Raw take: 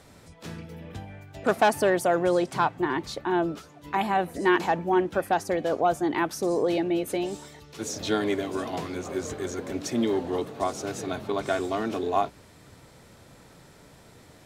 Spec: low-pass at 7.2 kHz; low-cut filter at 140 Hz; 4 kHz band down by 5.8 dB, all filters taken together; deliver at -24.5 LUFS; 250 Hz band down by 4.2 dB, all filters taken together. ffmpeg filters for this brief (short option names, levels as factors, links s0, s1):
-af "highpass=140,lowpass=7200,equalizer=f=250:t=o:g=-6.5,equalizer=f=4000:t=o:g=-7.5,volume=1.68"